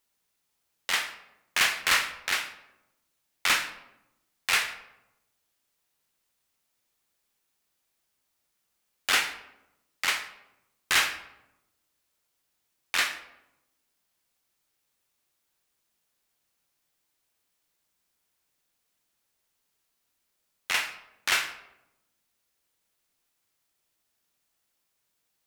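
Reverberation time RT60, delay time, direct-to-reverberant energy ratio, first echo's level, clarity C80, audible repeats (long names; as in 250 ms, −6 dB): 0.90 s, no echo audible, 8.0 dB, no echo audible, 13.5 dB, no echo audible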